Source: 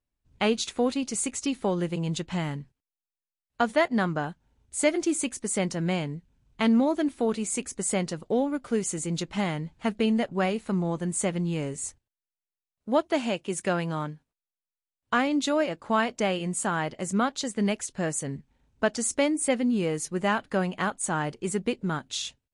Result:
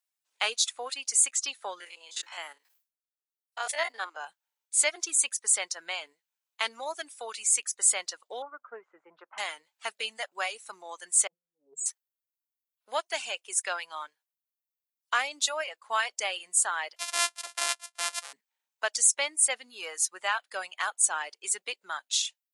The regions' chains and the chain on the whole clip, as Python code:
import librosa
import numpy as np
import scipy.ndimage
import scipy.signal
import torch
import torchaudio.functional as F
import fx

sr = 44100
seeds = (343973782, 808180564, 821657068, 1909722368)

y = fx.chain(x, sr, fx.spec_steps(hold_ms=50),
    fx.highpass(hz=300.0, slope=24),
    fx.sustainer(db_per_s=140.0), at=(1.8, 4.27))
y = fx.chain(y, sr, fx.self_delay(depth_ms=0.073),
    fx.cheby1_bandpass(low_hz=140.0, high_hz=1400.0, order=3), at=(8.42, 9.38))
y = fx.chain(y, sr, fx.spec_expand(power=3.6),
    fx.lowpass(hz=1400.0, slope=6),
    fx.over_compress(threshold_db=-37.0, ratio=-0.5), at=(11.27, 11.86))
y = fx.chain(y, sr, fx.sample_sort(block=128),
    fx.highpass(hz=500.0, slope=12),
    fx.resample_bad(factor=2, down='none', up='filtered'), at=(16.96, 18.33))
y = fx.high_shelf(y, sr, hz=3900.0, db=9.5)
y = fx.dereverb_blind(y, sr, rt60_s=1.4)
y = scipy.signal.sosfilt(scipy.signal.bessel(4, 1000.0, 'highpass', norm='mag', fs=sr, output='sos'), y)